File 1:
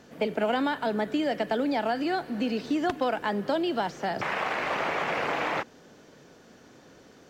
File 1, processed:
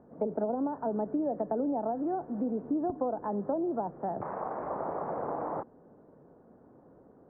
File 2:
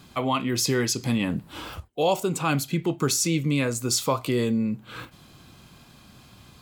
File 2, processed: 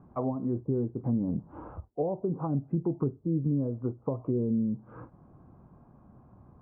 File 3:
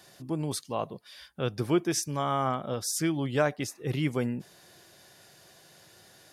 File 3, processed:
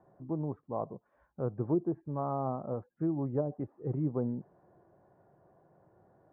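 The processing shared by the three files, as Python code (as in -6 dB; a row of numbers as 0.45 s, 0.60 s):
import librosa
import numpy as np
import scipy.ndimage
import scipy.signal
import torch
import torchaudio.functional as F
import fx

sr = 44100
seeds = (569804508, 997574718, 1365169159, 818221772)

y = fx.env_lowpass_down(x, sr, base_hz=410.0, full_db=-20.5)
y = scipy.signal.sosfilt(scipy.signal.cheby2(4, 70, 4500.0, 'lowpass', fs=sr, output='sos'), y)
y = y * 10.0 ** (-3.0 / 20.0)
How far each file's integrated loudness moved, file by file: -5.0 LU, -6.5 LU, -5.0 LU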